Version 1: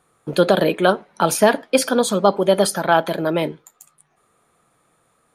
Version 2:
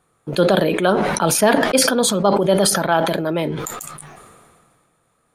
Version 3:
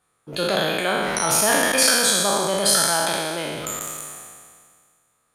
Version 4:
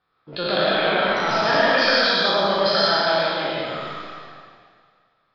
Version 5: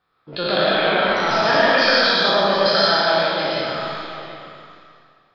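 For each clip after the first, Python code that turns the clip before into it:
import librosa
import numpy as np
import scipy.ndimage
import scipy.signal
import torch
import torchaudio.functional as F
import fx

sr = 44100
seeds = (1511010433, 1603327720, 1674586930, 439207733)

y1 = fx.low_shelf(x, sr, hz=170.0, db=5.0)
y1 = fx.sustainer(y1, sr, db_per_s=29.0)
y1 = y1 * librosa.db_to_amplitude(-2.5)
y2 = fx.spec_trails(y1, sr, decay_s=1.89)
y2 = fx.tilt_shelf(y2, sr, db=-4.5, hz=930.0)
y2 = y2 * librosa.db_to_amplitude(-8.5)
y3 = scipy.signal.sosfilt(scipy.signal.cheby1(6, 3, 5200.0, 'lowpass', fs=sr, output='sos'), y2)
y3 = fx.rev_freeverb(y3, sr, rt60_s=0.93, hf_ratio=0.8, predelay_ms=65, drr_db=-3.0)
y3 = y3 * librosa.db_to_amplitude(-1.0)
y4 = y3 + 10.0 ** (-13.0 / 20.0) * np.pad(y3, (int(730 * sr / 1000.0), 0))[:len(y3)]
y4 = y4 * librosa.db_to_amplitude(2.0)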